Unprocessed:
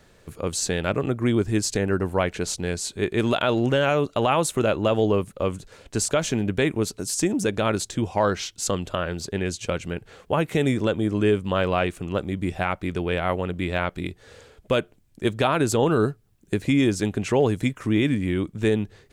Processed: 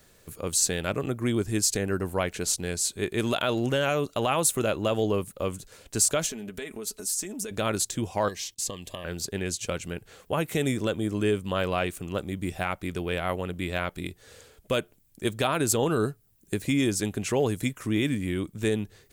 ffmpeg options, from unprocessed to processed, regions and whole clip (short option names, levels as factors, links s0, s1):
-filter_complex "[0:a]asettb=1/sr,asplit=3[s0][s1][s2];[s0]atrim=end=6.264[s3];[s1]atrim=start=6.26:end=7.51,asetpts=PTS-STARTPTS,afade=t=in:d=0.004:c=qsin,afade=t=out:st=1.246:d=0.004:c=qsin,equalizer=f=130:t=o:w=0.75:g=-15,aecho=1:1:4.7:0.54,atrim=end_sample=55125,acompressor=threshold=0.0316:ratio=4:attack=3.2:release=140:knee=1:detection=peak[s4];[s2]atrim=start=7.506[s5];[s3][s4]acrossfade=d=0.004:c1=hsin:c2=qsin[s6];[s6][s5]acrossfade=d=0.004:c1=qsin:c2=hsin,asettb=1/sr,asplit=3[s7][s8][s9];[s7]atrim=end=8.284[s10];[s8]atrim=start=8.28:end=9.05,asetpts=PTS-STARTPTS,afade=t=in:d=0.004:c=qsin,afade=t=out:st=0.766:d=0.004:c=qsin,agate=range=0.126:threshold=0.00282:ratio=16:release=100:detection=peak,acrossover=split=1400|5600[s11][s12][s13];[s11]acompressor=threshold=0.0251:ratio=4[s14];[s12]acompressor=threshold=0.0141:ratio=4[s15];[s13]acompressor=threshold=0.0126:ratio=4[s16];[s14][s15][s16]amix=inputs=3:normalize=0,asuperstop=centerf=1400:order=12:qfactor=3.8[s17];[s9]atrim=start=9.046[s18];[s10][s17]acrossfade=d=0.004:c1=hsin:c2=qsin[s19];[s19][s18]acrossfade=d=0.004:c1=qsin:c2=hsin,aemphasis=mode=production:type=50fm,bandreject=f=880:w=26,volume=0.596"